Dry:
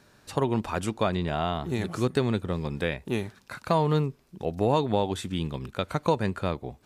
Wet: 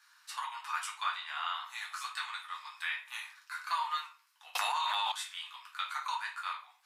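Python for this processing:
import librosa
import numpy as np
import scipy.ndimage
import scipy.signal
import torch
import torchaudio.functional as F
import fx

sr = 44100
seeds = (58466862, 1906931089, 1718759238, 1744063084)

y = scipy.signal.sosfilt(scipy.signal.butter(8, 1000.0, 'highpass', fs=sr, output='sos'), x)
y = fx.room_shoebox(y, sr, seeds[0], volume_m3=30.0, walls='mixed', distance_m=0.79)
y = fx.env_flatten(y, sr, amount_pct=100, at=(4.55, 5.12))
y = y * librosa.db_to_amplitude(-5.5)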